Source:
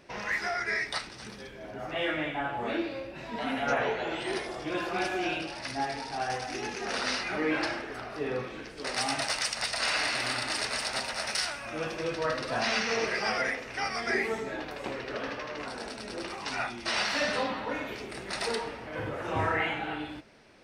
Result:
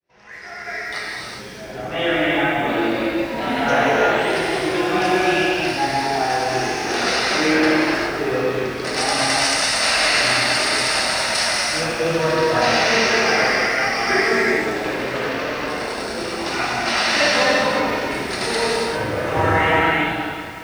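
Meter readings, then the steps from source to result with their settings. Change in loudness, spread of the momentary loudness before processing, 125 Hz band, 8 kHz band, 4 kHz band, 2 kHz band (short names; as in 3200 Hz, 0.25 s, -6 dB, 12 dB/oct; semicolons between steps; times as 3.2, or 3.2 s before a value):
+13.0 dB, 10 LU, +12.5 dB, +13.0 dB, +12.5 dB, +12.5 dB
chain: opening faded in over 2.01 s; non-linear reverb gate 0.43 s flat, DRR -5.5 dB; lo-fi delay 0.182 s, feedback 80%, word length 7-bit, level -15 dB; gain +6 dB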